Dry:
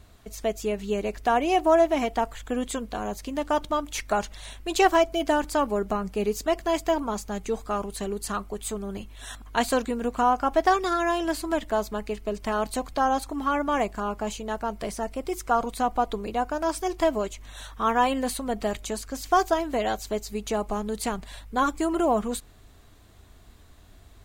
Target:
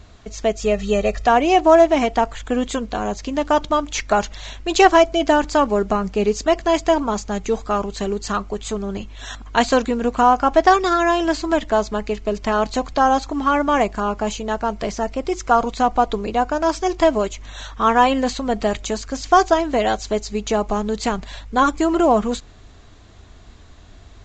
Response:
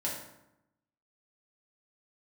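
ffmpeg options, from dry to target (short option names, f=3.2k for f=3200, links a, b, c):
-filter_complex "[0:a]asettb=1/sr,asplit=3[a][b][c];[a]atrim=end=0.624[d];[b]atrim=start=0.62:end=1.27,asetpts=PTS-STARTPTS,afade=t=in:d=0.004:c=qsin,afade=t=out:st=0.646:d=0.004:c=qsin,aecho=1:1:1.6:0.94,atrim=end_sample=28665[e];[c]atrim=start=1.266[f];[d][e]acrossfade=d=0.004:c1=hsin:c2=qsin[g];[g][f]acrossfade=d=0.004:c1=qsin:c2=hsin,volume=7.5dB" -ar 16000 -c:a pcm_mulaw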